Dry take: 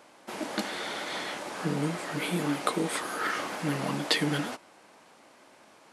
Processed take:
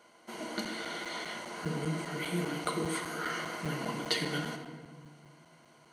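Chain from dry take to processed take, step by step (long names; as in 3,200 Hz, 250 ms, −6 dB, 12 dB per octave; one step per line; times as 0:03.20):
EQ curve with evenly spaced ripples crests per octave 1.9, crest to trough 10 dB
rectangular room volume 1,600 cubic metres, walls mixed, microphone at 1.3 metres
regular buffer underruns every 0.20 s, samples 256, zero
level −7 dB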